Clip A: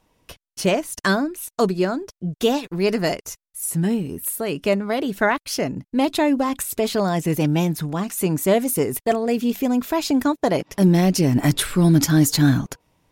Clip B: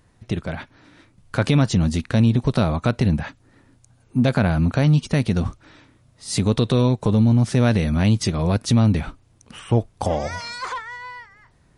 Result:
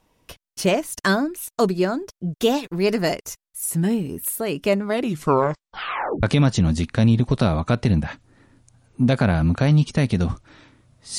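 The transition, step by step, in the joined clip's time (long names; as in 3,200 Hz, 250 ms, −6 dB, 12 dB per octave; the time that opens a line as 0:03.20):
clip A
0:04.87: tape stop 1.36 s
0:06.23: continue with clip B from 0:01.39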